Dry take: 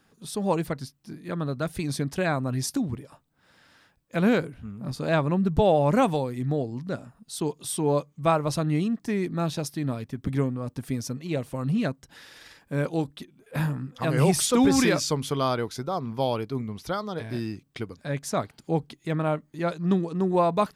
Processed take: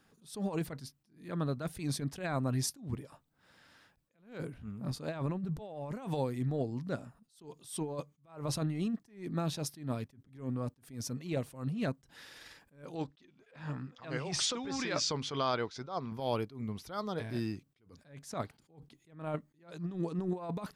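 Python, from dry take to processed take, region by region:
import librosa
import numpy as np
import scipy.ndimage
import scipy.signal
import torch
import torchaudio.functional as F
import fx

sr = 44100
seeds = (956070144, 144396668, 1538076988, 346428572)

y = fx.chain(x, sr, fx.lowpass(hz=6200.0, slope=24),
    fx.over_compress(threshold_db=-25.0, ratio=-1.0),
    fx.low_shelf(hz=460.0, db=-8.0), at=(12.95, 16.12))
y = fx.over_compress(y, sr, threshold_db=-26.0, ratio=-0.5)
y = fx.attack_slew(y, sr, db_per_s=140.0)
y = y * librosa.db_to_amplitude(-6.0)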